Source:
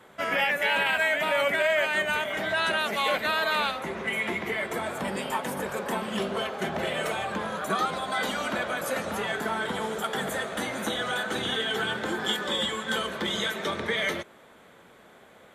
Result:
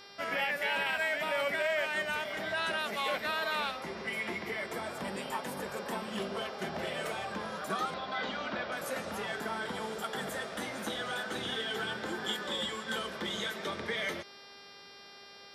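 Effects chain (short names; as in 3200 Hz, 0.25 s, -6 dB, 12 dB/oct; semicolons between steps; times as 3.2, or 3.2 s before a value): buzz 400 Hz, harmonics 14, -46 dBFS 0 dB/oct; 7.94–8.72 inverse Chebyshev low-pass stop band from 11000 Hz, stop band 50 dB; gain -7 dB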